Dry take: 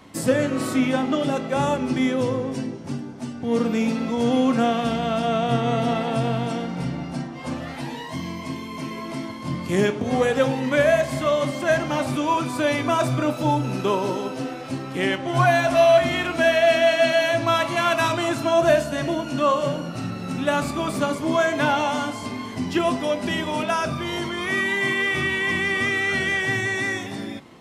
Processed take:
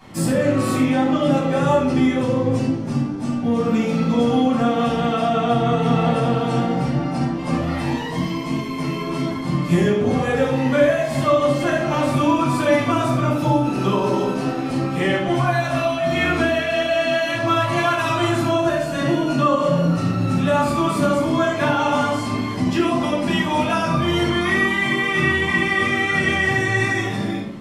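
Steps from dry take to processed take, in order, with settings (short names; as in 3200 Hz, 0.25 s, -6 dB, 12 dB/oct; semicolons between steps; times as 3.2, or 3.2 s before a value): compressor, threshold -22 dBFS, peak gain reduction 10.5 dB; shoebox room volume 830 m³, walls furnished, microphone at 8.7 m; gain -4.5 dB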